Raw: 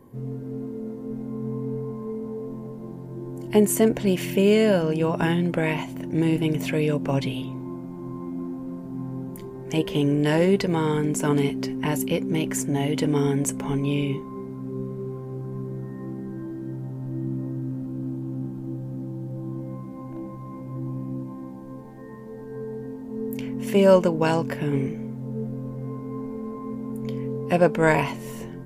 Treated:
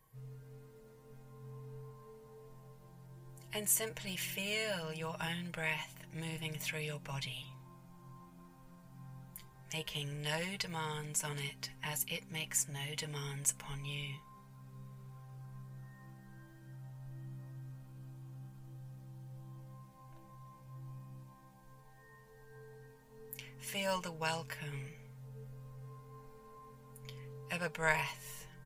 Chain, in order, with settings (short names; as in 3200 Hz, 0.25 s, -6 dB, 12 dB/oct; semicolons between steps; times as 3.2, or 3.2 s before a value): passive tone stack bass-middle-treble 10-0-10; comb 6.4 ms; gain -5 dB